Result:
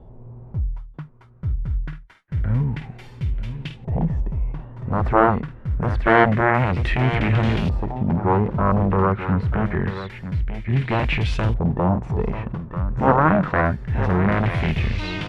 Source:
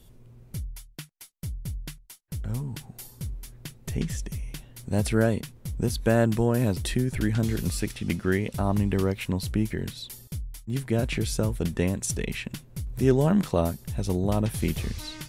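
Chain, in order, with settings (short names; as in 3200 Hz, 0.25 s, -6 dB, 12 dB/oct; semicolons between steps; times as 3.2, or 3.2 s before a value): added harmonics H 3 -14 dB, 7 -10 dB, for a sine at -7 dBFS; echo 0.94 s -11.5 dB; LFO low-pass saw up 0.26 Hz 780–3000 Hz; harmonic-percussive split harmonic +9 dB; gain -2 dB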